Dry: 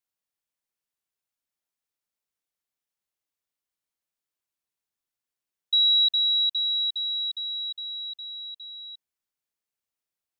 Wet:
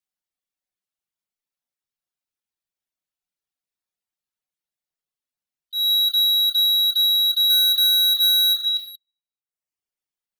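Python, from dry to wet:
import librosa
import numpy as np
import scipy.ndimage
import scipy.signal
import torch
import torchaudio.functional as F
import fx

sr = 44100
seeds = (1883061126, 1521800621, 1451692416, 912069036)

y = fx.band_invert(x, sr, width_hz=500)
y = fx.level_steps(y, sr, step_db=19)
y = fx.peak_eq(y, sr, hz=3700.0, db=fx.steps((0.0, 2.5), (7.5, 15.0), (8.77, 2.5)), octaves=0.81)
y = fx.room_shoebox(y, sr, seeds[0], volume_m3=340.0, walls='mixed', distance_m=1.0)
y = fx.leveller(y, sr, passes=5)
y = fx.dereverb_blind(y, sr, rt60_s=0.85)
y = fx.auto_swell(y, sr, attack_ms=206.0)
y = fx.band_squash(y, sr, depth_pct=40)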